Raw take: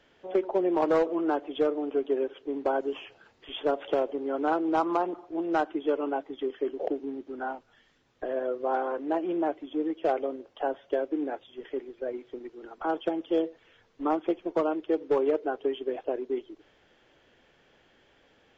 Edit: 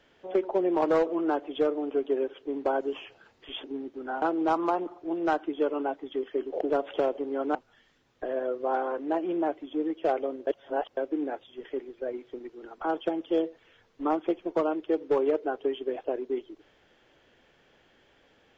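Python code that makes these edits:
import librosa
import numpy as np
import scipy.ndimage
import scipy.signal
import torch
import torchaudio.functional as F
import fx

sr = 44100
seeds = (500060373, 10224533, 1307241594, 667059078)

y = fx.edit(x, sr, fx.swap(start_s=3.64, length_s=0.85, other_s=6.97, other_length_s=0.58),
    fx.reverse_span(start_s=10.47, length_s=0.5), tone=tone)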